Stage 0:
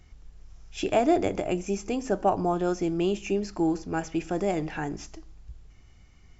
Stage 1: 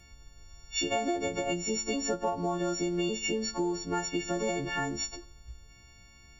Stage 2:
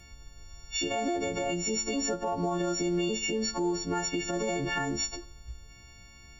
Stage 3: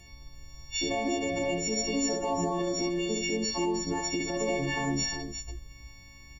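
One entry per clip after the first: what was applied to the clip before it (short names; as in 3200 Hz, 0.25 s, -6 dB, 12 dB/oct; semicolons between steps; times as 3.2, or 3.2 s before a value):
frequency quantiser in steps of 4 st; compressor 6:1, threshold -27 dBFS, peak gain reduction 10.5 dB
limiter -25 dBFS, peak gain reduction 7.5 dB; gain +3.5 dB
notch 1400 Hz, Q 10; tapped delay 65/353 ms -4/-7.5 dB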